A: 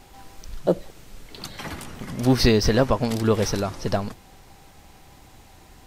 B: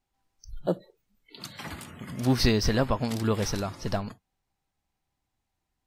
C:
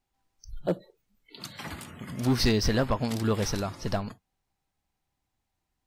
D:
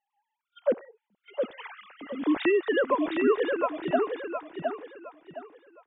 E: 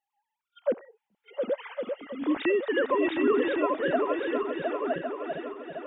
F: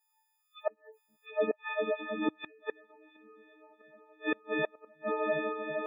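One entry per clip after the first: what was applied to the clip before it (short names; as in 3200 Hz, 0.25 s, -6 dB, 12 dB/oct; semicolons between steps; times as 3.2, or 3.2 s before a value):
spectral noise reduction 28 dB; bell 460 Hz -4 dB 1 oct; gain -4 dB
hard clip -17 dBFS, distortion -16 dB
sine-wave speech; on a send: feedback echo 0.714 s, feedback 30%, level -4.5 dB
regenerating reverse delay 0.554 s, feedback 58%, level -3 dB; gain -2 dB
frequency quantiser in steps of 6 st; flipped gate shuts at -18 dBFS, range -35 dB; spectral gate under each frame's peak -25 dB strong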